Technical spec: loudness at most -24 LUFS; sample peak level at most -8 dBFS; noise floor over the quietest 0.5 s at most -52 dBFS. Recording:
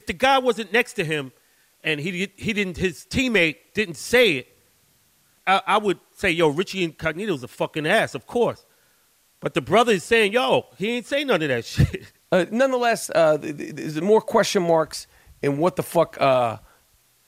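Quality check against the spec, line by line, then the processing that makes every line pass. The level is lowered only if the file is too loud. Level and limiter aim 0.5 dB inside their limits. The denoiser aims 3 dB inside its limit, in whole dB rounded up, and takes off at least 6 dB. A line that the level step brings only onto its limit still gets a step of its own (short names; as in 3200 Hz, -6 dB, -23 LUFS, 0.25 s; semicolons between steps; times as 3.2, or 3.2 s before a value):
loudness -21.5 LUFS: fail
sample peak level -6.0 dBFS: fail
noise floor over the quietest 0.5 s -61 dBFS: OK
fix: gain -3 dB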